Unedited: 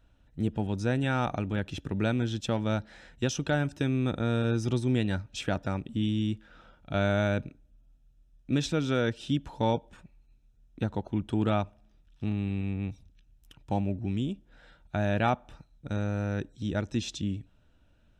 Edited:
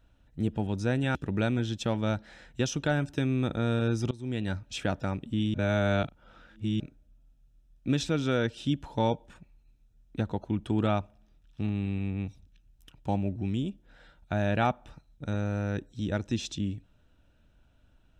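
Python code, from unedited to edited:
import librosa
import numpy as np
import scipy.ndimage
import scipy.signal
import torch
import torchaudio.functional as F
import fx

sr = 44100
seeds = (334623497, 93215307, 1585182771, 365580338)

y = fx.edit(x, sr, fx.cut(start_s=1.15, length_s=0.63),
    fx.fade_in_from(start_s=4.74, length_s=0.48, floor_db=-21.5),
    fx.reverse_span(start_s=6.17, length_s=1.26), tone=tone)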